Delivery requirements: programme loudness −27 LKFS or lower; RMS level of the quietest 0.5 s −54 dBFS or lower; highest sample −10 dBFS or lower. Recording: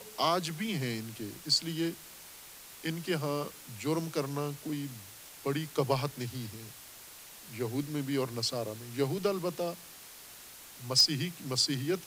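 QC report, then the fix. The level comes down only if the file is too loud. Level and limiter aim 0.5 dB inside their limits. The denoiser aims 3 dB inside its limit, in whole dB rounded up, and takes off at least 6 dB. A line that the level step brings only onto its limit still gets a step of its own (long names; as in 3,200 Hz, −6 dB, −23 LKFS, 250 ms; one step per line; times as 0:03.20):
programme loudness −32.5 LKFS: in spec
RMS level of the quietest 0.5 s −50 dBFS: out of spec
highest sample −14.5 dBFS: in spec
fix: broadband denoise 7 dB, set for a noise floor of −50 dBFS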